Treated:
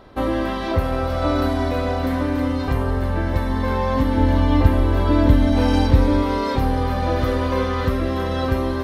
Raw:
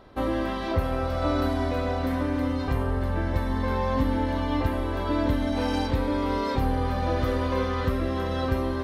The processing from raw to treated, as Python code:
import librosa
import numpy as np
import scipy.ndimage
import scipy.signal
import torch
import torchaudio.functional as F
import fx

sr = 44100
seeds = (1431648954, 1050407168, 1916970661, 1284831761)

y = fx.low_shelf(x, sr, hz=230.0, db=8.5, at=(4.17, 6.23))
y = fx.echo_wet_highpass(y, sr, ms=284, feedback_pct=55, hz=4400.0, wet_db=-9)
y = y * librosa.db_to_amplitude(5.0)